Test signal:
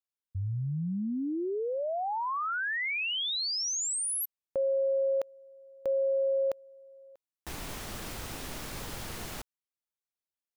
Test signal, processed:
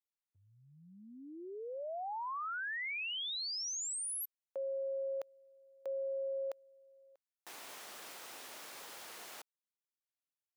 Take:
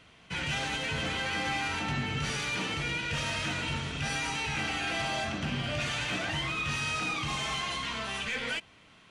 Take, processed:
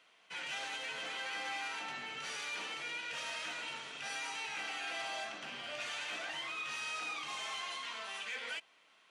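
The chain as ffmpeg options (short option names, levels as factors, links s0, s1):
-af "highpass=520,volume=0.422"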